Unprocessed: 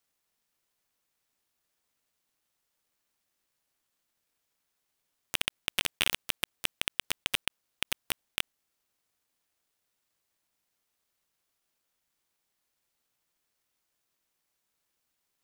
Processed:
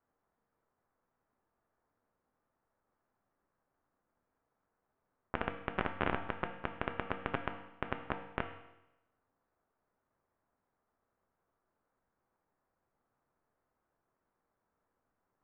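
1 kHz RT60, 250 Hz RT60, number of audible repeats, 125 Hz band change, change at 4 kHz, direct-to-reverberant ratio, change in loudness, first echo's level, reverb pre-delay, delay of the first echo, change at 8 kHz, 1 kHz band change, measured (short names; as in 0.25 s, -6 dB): 0.90 s, 0.90 s, none, +6.5 dB, -21.0 dB, 5.5 dB, -7.0 dB, none, 4 ms, none, under -35 dB, +6.0 dB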